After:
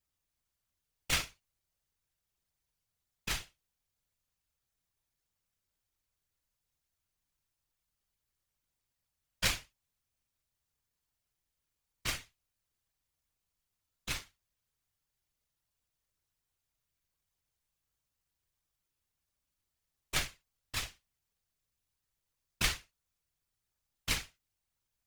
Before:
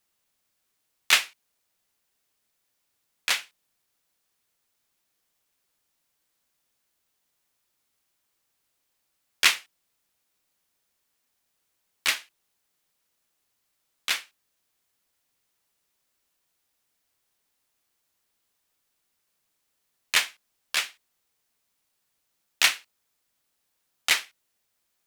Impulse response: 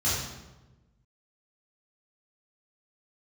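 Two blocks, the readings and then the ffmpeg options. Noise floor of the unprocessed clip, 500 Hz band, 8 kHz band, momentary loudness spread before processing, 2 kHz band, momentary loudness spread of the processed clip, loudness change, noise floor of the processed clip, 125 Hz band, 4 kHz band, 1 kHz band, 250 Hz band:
-77 dBFS, -3.5 dB, -9.0 dB, 13 LU, -12.5 dB, 12 LU, -11.0 dB, under -85 dBFS, n/a, -11.5 dB, -9.5 dB, +5.0 dB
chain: -filter_complex "[0:a]asplit=2[a][b];[1:a]atrim=start_sample=2205,atrim=end_sample=3087[c];[b][c]afir=irnorm=-1:irlink=0,volume=-16dB[d];[a][d]amix=inputs=2:normalize=0,aeval=exprs='max(val(0),0)':c=same,afftfilt=real='hypot(re,im)*cos(2*PI*random(0))':imag='hypot(re,im)*sin(2*PI*random(1))':win_size=512:overlap=0.75"

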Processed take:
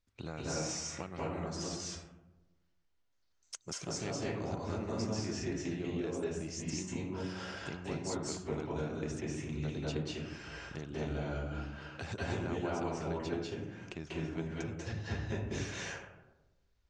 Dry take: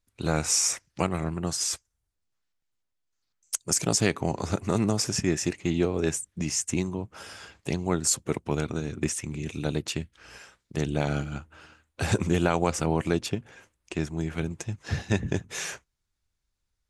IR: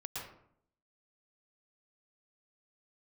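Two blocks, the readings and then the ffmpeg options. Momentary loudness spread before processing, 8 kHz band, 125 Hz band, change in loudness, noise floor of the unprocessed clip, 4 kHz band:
12 LU, -15.5 dB, -9.5 dB, -10.5 dB, -80 dBFS, -10.5 dB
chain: -filter_complex "[0:a]lowpass=f=6.3k:w=0.5412,lowpass=f=6.3k:w=1.3066,acompressor=threshold=-43dB:ratio=2.5[a];[1:a]atrim=start_sample=2205,asetrate=25137,aresample=44100[b];[a][b]afir=irnorm=-1:irlink=0"

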